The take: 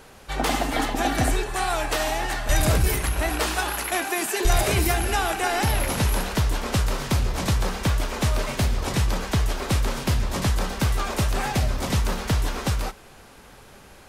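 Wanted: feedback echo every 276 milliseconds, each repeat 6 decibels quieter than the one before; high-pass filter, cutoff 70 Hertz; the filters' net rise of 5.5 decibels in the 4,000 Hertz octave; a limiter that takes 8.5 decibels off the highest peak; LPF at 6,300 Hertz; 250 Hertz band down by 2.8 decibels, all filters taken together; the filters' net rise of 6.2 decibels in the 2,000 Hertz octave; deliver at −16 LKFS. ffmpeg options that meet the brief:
ffmpeg -i in.wav -af "highpass=70,lowpass=6300,equalizer=frequency=250:width_type=o:gain=-4,equalizer=frequency=2000:width_type=o:gain=6.5,equalizer=frequency=4000:width_type=o:gain=5.5,alimiter=limit=-16.5dB:level=0:latency=1,aecho=1:1:276|552|828|1104|1380|1656:0.501|0.251|0.125|0.0626|0.0313|0.0157,volume=9dB" out.wav

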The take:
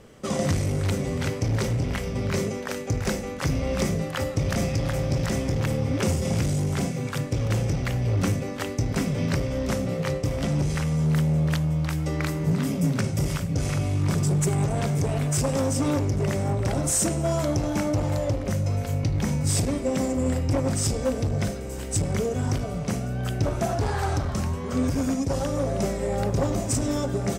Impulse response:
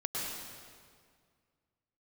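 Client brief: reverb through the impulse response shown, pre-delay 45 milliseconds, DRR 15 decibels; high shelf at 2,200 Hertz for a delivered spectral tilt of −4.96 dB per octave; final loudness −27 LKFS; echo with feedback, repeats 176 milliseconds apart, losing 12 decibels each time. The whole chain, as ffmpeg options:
-filter_complex "[0:a]highshelf=frequency=2200:gain=5,aecho=1:1:176|352|528:0.251|0.0628|0.0157,asplit=2[link_01][link_02];[1:a]atrim=start_sample=2205,adelay=45[link_03];[link_02][link_03]afir=irnorm=-1:irlink=0,volume=-19.5dB[link_04];[link_01][link_04]amix=inputs=2:normalize=0,volume=-2.5dB"

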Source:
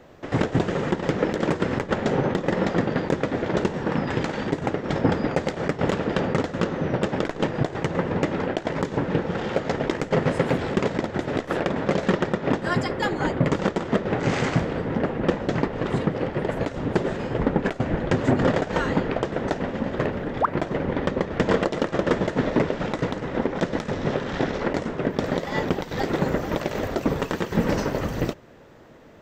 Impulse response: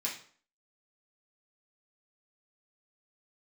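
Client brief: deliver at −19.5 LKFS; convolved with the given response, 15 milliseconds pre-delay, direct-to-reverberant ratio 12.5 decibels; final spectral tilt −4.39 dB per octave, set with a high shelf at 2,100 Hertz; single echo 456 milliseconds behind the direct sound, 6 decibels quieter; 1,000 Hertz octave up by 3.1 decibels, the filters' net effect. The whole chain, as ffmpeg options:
-filter_complex "[0:a]equalizer=frequency=1000:width_type=o:gain=5,highshelf=frequency=2100:gain=-5,aecho=1:1:456:0.501,asplit=2[link_01][link_02];[1:a]atrim=start_sample=2205,adelay=15[link_03];[link_02][link_03]afir=irnorm=-1:irlink=0,volume=-16dB[link_04];[link_01][link_04]amix=inputs=2:normalize=0,volume=4dB"

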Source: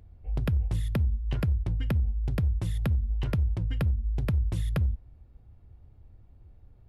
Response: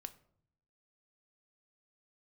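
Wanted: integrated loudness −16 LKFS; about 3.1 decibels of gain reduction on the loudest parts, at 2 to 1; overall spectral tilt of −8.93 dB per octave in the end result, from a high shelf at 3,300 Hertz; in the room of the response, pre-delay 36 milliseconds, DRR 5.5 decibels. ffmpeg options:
-filter_complex "[0:a]highshelf=frequency=3300:gain=-6.5,acompressor=threshold=-27dB:ratio=2,asplit=2[link_01][link_02];[1:a]atrim=start_sample=2205,adelay=36[link_03];[link_02][link_03]afir=irnorm=-1:irlink=0,volume=-1dB[link_04];[link_01][link_04]amix=inputs=2:normalize=0,volume=13.5dB"

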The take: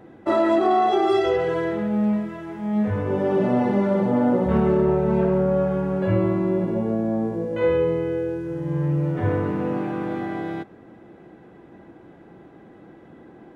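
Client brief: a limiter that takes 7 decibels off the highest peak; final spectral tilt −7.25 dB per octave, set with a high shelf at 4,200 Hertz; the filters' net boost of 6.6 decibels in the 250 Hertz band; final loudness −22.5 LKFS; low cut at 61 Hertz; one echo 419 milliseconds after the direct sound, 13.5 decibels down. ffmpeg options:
ffmpeg -i in.wav -af "highpass=61,equalizer=frequency=250:width_type=o:gain=9,highshelf=frequency=4200:gain=-4,alimiter=limit=-10.5dB:level=0:latency=1,aecho=1:1:419:0.211,volume=-3.5dB" out.wav

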